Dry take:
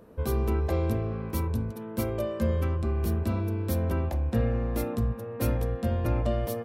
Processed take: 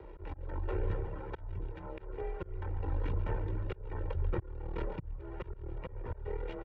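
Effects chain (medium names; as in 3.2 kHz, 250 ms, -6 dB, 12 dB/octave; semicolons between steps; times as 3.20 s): CVSD coder 64 kbps; half-wave rectifier; reverb removal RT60 0.93 s; frequency shift +53 Hz; comb 1.4 ms, depth 71%; on a send: feedback delay 140 ms, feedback 51%, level -13 dB; on the sum: pitch shift -7.5 st; low-pass 2.5 kHz 24 dB/octave; peaking EQ 160 Hz -9 dB 2.4 oct; slow attack 550 ms; three bands compressed up and down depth 40%; trim +4 dB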